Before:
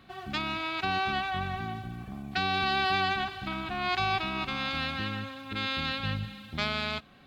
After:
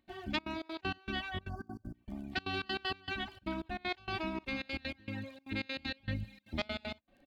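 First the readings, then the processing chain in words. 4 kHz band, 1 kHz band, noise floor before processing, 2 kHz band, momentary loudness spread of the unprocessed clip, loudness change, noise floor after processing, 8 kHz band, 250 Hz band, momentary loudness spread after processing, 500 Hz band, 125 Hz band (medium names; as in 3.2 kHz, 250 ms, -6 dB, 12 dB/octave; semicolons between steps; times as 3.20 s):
-9.0 dB, -13.0 dB, -50 dBFS, -8.5 dB, 10 LU, -8.5 dB, -71 dBFS, no reading, -3.5 dB, 7 LU, -4.0 dB, -7.0 dB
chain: spectral selection erased 1.49–1.94 s, 1.8–4.5 kHz; treble shelf 3.3 kHz -9 dB; reverb removal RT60 1 s; comb 3.3 ms, depth 61%; upward compressor, threshold -48 dBFS; crackle 13 per s -51 dBFS; trance gate ".xxxx.xx.x.x." 195 bpm -24 dB; peaking EQ 1.3 kHz -10 dB 0.61 oct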